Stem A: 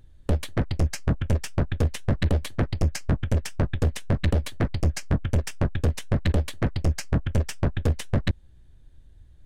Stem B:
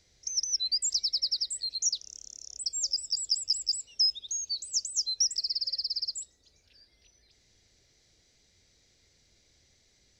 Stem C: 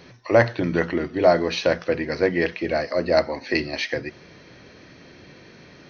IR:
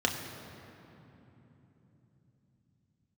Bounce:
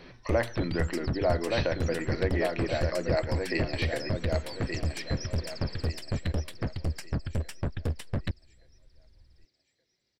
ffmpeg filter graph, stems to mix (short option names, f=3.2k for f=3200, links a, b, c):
-filter_complex "[0:a]volume=-7.5dB[a];[1:a]volume=-11.5dB,asplit=2[b][c];[c]volume=-13.5dB[d];[2:a]volume=-2dB,asplit=2[e][f];[f]volume=-12.5dB[g];[b][e]amix=inputs=2:normalize=0,highpass=130,lowpass=5.3k,acompressor=threshold=-39dB:ratio=1.5,volume=0dB[h];[d][g]amix=inputs=2:normalize=0,aecho=0:1:1172|2344|3516|4688|5860:1|0.33|0.109|0.0359|0.0119[i];[a][h][i]amix=inputs=3:normalize=0,bandreject=f=6.4k:w=6"